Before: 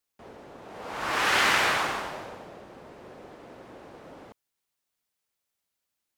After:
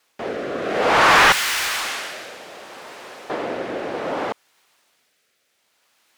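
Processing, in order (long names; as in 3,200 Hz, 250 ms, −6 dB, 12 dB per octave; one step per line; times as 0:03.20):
rotating-speaker cabinet horn 0.6 Hz
mid-hump overdrive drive 30 dB, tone 2,600 Hz, clips at −10 dBFS
0:01.32–0:03.30: first-order pre-emphasis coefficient 0.9
level +5.5 dB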